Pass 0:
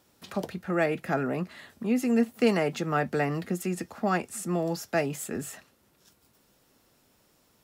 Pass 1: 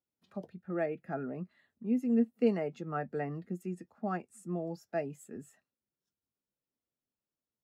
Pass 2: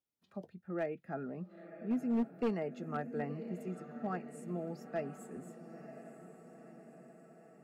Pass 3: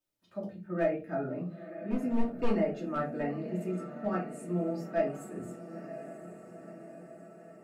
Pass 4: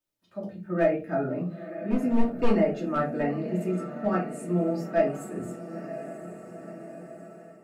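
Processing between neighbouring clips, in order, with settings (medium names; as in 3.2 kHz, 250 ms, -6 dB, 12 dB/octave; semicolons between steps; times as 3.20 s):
spectral contrast expander 1.5:1; trim -4 dB
echo that smears into a reverb 985 ms, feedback 59%, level -12 dB; overload inside the chain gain 24 dB; trim -3.5 dB
simulated room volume 140 m³, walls furnished, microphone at 2.7 m
level rider gain up to 6 dB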